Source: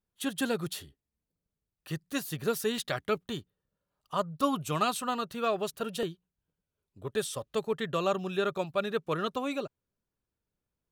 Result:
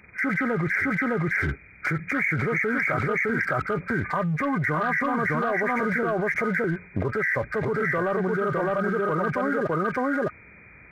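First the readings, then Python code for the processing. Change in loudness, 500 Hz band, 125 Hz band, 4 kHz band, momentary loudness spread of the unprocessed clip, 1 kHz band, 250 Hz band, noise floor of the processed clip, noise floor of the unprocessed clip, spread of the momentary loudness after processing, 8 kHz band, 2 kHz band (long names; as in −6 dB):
+7.5 dB, +6.0 dB, +12.0 dB, −11.5 dB, 8 LU, +7.0 dB, +8.5 dB, −50 dBFS, below −85 dBFS, 3 LU, below −10 dB, +17.0 dB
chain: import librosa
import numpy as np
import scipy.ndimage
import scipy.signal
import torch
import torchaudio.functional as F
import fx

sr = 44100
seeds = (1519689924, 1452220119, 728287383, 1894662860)

y = fx.freq_compress(x, sr, knee_hz=1200.0, ratio=4.0)
y = scipy.signal.sosfilt(scipy.signal.butter(4, 50.0, 'highpass', fs=sr, output='sos'), y)
y = fx.leveller(y, sr, passes=1)
y = y + 10.0 ** (-3.5 / 20.0) * np.pad(y, (int(610 * sr / 1000.0), 0))[:len(y)]
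y = fx.env_flatten(y, sr, amount_pct=100)
y = y * librosa.db_to_amplitude(-4.5)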